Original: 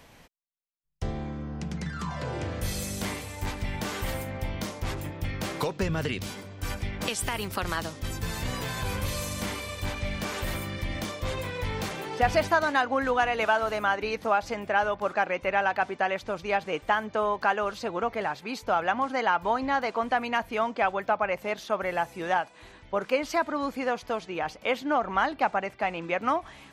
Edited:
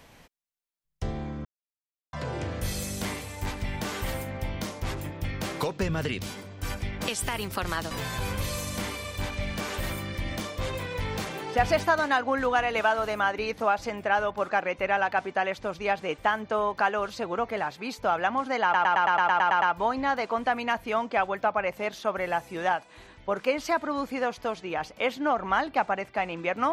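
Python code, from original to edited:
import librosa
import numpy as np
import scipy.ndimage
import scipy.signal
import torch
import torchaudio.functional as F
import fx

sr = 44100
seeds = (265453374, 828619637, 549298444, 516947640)

y = fx.edit(x, sr, fx.silence(start_s=1.45, length_s=0.68),
    fx.cut(start_s=7.91, length_s=0.64),
    fx.stutter(start_s=19.27, slice_s=0.11, count=10), tone=tone)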